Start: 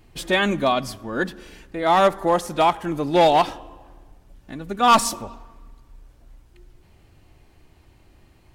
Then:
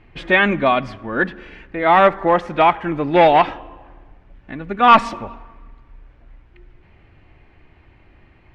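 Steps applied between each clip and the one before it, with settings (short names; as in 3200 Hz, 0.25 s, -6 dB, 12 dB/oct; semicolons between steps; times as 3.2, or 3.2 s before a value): synth low-pass 2200 Hz, resonance Q 1.9; gain +3 dB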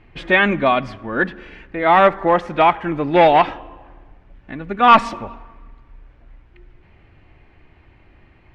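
nothing audible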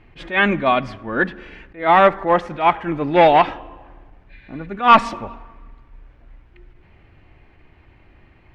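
spectral repair 4.32–4.64, 1500–5000 Hz after; attack slew limiter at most 200 dB/s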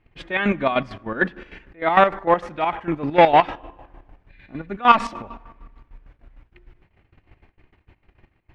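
gate -48 dBFS, range -14 dB; chopper 6.6 Hz, depth 65%, duty 45%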